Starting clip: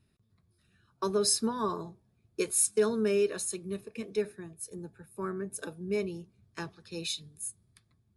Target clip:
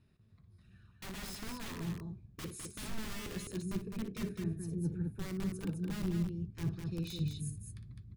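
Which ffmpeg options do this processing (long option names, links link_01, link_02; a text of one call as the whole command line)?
ffmpeg -i in.wav -filter_complex "[0:a]aemphasis=mode=reproduction:type=50kf,acrossover=split=6800[link_01][link_02];[link_02]acompressor=threshold=-38dB:ratio=4:attack=1:release=60[link_03];[link_01][link_03]amix=inputs=2:normalize=0,aeval=exprs='(mod(28.2*val(0)+1,2)-1)/28.2':channel_layout=same,areverse,acompressor=threshold=-46dB:ratio=12,areverse,asubboost=boost=9:cutoff=230,asplit=2[link_04][link_05];[link_05]aecho=0:1:58.31|207:0.316|0.562[link_06];[link_04][link_06]amix=inputs=2:normalize=0,volume=1.5dB" out.wav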